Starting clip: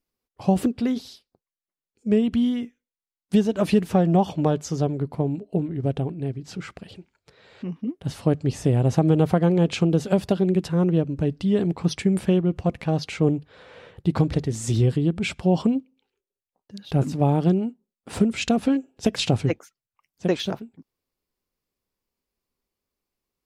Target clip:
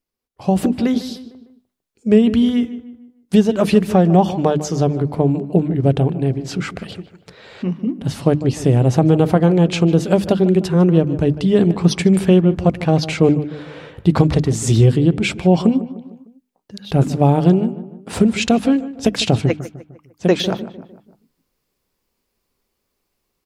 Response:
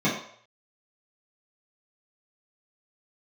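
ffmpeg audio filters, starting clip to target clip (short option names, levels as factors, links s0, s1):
-filter_complex "[0:a]bandreject=f=50:t=h:w=6,bandreject=f=100:t=h:w=6,bandreject=f=150:t=h:w=6,bandreject=f=200:t=h:w=6,bandreject=f=250:t=h:w=6,bandreject=f=300:t=h:w=6,asplit=2[s0][s1];[s1]adelay=151,lowpass=f=2100:p=1,volume=0.2,asplit=2[s2][s3];[s3]adelay=151,lowpass=f=2100:p=1,volume=0.46,asplit=2[s4][s5];[s5]adelay=151,lowpass=f=2100:p=1,volume=0.46,asplit=2[s6][s7];[s7]adelay=151,lowpass=f=2100:p=1,volume=0.46[s8];[s2][s4][s6][s8]amix=inputs=4:normalize=0[s9];[s0][s9]amix=inputs=2:normalize=0,dynaudnorm=f=100:g=11:m=3.76"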